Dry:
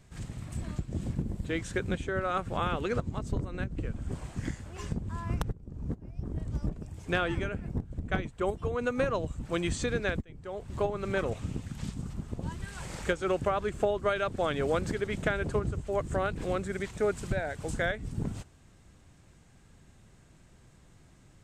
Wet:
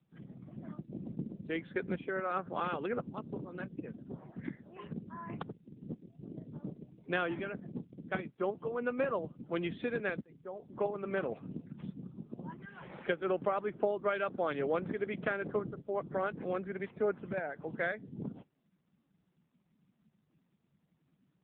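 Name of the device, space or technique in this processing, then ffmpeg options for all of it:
mobile call with aggressive noise cancelling: -af "highpass=frequency=160:width=0.5412,highpass=frequency=160:width=1.3066,afftdn=noise_reduction=34:noise_floor=-49,volume=-3dB" -ar 8000 -c:a libopencore_amrnb -b:a 7950

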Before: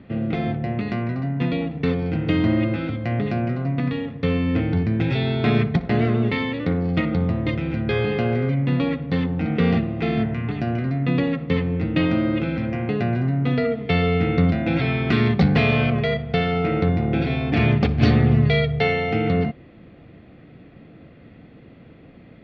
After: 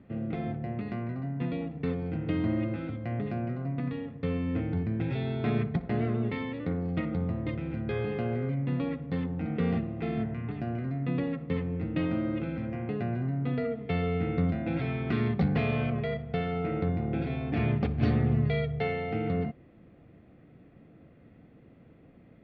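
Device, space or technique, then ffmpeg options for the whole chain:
through cloth: -af "highshelf=frequency=3300:gain=-13,volume=-9dB"

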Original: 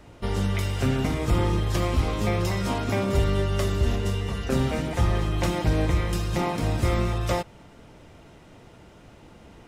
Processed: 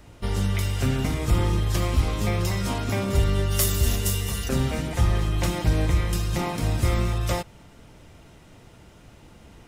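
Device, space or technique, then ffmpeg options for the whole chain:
smiley-face EQ: -filter_complex "[0:a]lowshelf=frequency=140:gain=3,equalizer=frequency=480:width_type=o:width=2.8:gain=-3,highshelf=frequency=7100:gain=7,asplit=3[link_01][link_02][link_03];[link_01]afade=type=out:start_time=3.5:duration=0.02[link_04];[link_02]aemphasis=mode=production:type=75fm,afade=type=in:start_time=3.5:duration=0.02,afade=type=out:start_time=4.48:duration=0.02[link_05];[link_03]afade=type=in:start_time=4.48:duration=0.02[link_06];[link_04][link_05][link_06]amix=inputs=3:normalize=0"

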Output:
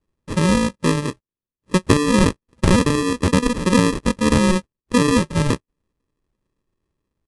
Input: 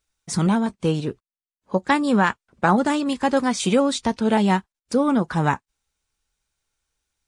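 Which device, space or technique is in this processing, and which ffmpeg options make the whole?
crushed at another speed: -af "asetrate=88200,aresample=44100,acrusher=samples=30:mix=1:aa=0.000001,asetrate=22050,aresample=44100,volume=3dB"

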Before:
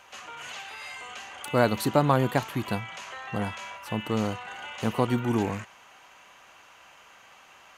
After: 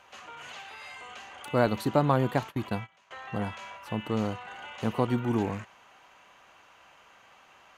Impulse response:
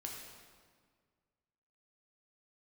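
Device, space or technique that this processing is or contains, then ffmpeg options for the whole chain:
behind a face mask: -filter_complex "[0:a]highshelf=frequency=2300:gain=-7.5,asettb=1/sr,asplit=3[link_01][link_02][link_03];[link_01]atrim=end=1.664[link_04];[link_02]atrim=start=1.66:end=3.11,asetpts=PTS-STARTPTS,afade=type=in:duration=0.004:curve=qsin,afade=type=out:start_time=1.446:duration=0.004:curve=qsin,agate=range=-19dB:threshold=-34dB:ratio=16:detection=peak[link_05];[link_03]atrim=start=3.106[link_06];[link_04][link_05]acrossfade=duration=0.004:curve1=hsin:curve2=qsin[link_07];[link_07][link_06]acrossfade=duration=0.004:curve1=qsin:curve2=hsin,equalizer=frequency=3900:width=1.5:gain=2.5,volume=-1.5dB"

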